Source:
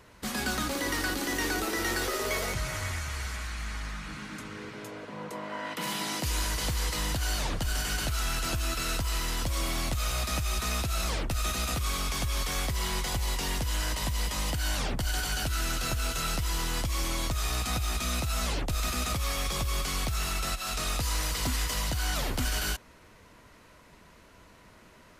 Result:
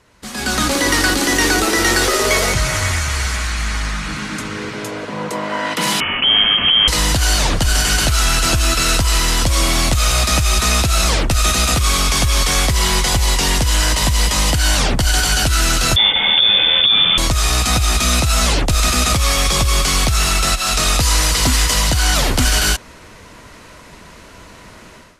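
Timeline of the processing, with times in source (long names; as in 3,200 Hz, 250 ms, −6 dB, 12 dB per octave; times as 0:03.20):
0:06.00–0:06.88: voice inversion scrambler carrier 3,200 Hz
0:15.96–0:17.18: voice inversion scrambler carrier 3,500 Hz
whole clip: low-pass filter 10,000 Hz 12 dB per octave; high-shelf EQ 4,600 Hz +5 dB; automatic gain control gain up to 15 dB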